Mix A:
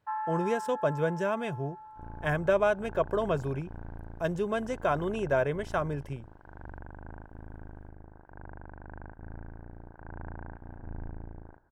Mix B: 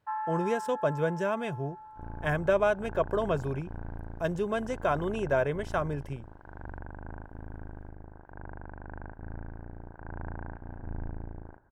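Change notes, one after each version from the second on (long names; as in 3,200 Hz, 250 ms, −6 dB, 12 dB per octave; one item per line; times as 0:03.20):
second sound: send on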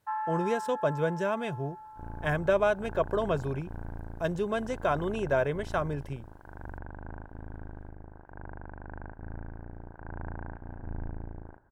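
speech: add parametric band 4,000 Hz +5.5 dB 0.28 octaves
first sound: remove high-frequency loss of the air 190 metres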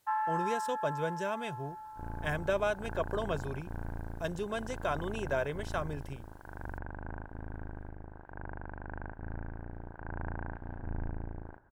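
speech −6.5 dB
master: add high-shelf EQ 2,400 Hz +8.5 dB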